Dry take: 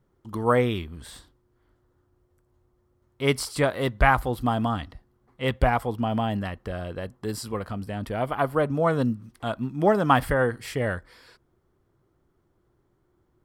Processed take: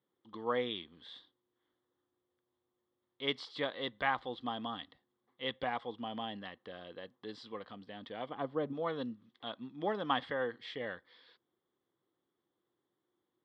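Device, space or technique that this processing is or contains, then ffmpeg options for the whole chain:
phone earpiece: -filter_complex "[0:a]asettb=1/sr,asplit=3[a][b][c];[a]atrim=end=8.294[d];[b]atrim=start=8.29:end=8.73,asetpts=PTS-STARTPTS,afade=t=in:d=0.004:c=qsin,afade=t=out:st=0.436:d=0.004:c=qsin,tiltshelf=f=640:g=7[e];[c]atrim=start=8.726[f];[d][e]acrossfade=d=0.004:c1=hsin:c2=qsin[g];[g][f]acrossfade=d=0.004:c1=qsin:c2=hsin,highpass=360,equalizer=f=390:t=q:w=4:g=-6,equalizer=f=640:t=q:w=4:g=-9,equalizer=f=920:t=q:w=4:g=-5,equalizer=f=1.4k:t=q:w=4:g=-9,equalizer=f=2.5k:t=q:w=4:g=-8,equalizer=f=3.5k:t=q:w=4:g=10,lowpass=f=3.8k:w=0.5412,lowpass=f=3.8k:w=1.3066,volume=-7dB"

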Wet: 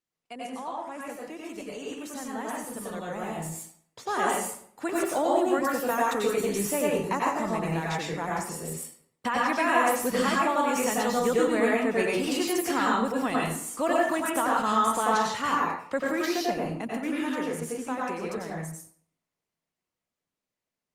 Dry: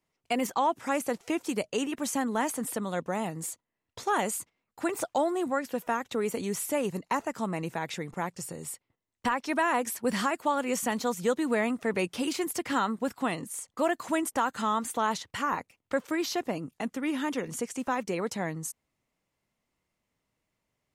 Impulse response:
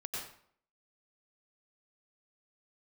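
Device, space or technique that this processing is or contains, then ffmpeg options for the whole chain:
far-field microphone of a smart speaker: -filter_complex "[0:a]asettb=1/sr,asplit=3[a][b][c];[a]atrim=end=5.624[d];[b]atrim=start=5.62:end=6.24,asetpts=PTS-STARTPTS,afade=t=in:d=0.004:c=qsin,afade=t=out:st=0.616:d=0.004:c=qsin,aemphasis=mode=production:type=cd[e];[c]atrim=start=6.236[f];[d][e]acrossfade=d=0.004:c1=hsin:c2=qsin[g];[g][f]acrossfade=d=0.004:c1=qsin:c2=hsin[h];[1:a]atrim=start_sample=2205[i];[h][i]afir=irnorm=-1:irlink=0,highpass=130,dynaudnorm=f=360:g=21:m=16dB,volume=-8.5dB" -ar 48000 -c:a libopus -b:a 32k

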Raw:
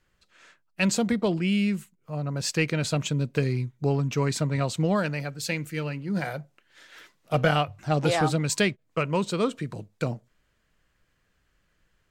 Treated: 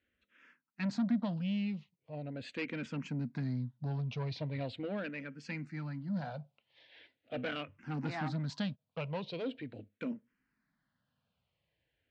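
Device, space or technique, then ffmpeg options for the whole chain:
barber-pole phaser into a guitar amplifier: -filter_complex "[0:a]asplit=2[a][b];[b]afreqshift=-0.41[c];[a][c]amix=inputs=2:normalize=1,asoftclip=type=tanh:threshold=-25dB,highpass=84,equalizer=f=250:t=q:w=4:g=9,equalizer=f=380:t=q:w=4:g=-7,equalizer=f=1.2k:t=q:w=4:g=-5,lowpass=f=4.2k:w=0.5412,lowpass=f=4.2k:w=1.3066,volume=-6dB"

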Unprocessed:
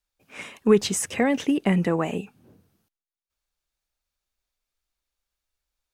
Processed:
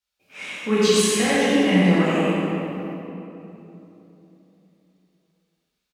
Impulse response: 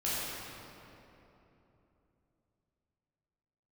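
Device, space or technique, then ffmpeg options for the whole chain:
PA in a hall: -filter_complex "[0:a]highpass=f=160:p=1,equalizer=f=3.4k:t=o:w=2:g=7,aecho=1:1:92:0.596[a];[1:a]atrim=start_sample=2205[b];[a][b]afir=irnorm=-1:irlink=0,volume=-5dB"

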